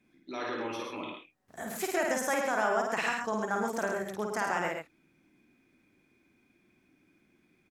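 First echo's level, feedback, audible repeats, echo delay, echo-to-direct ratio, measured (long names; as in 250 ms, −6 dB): −3.5 dB, repeats not evenly spaced, 2, 52 ms, −0.5 dB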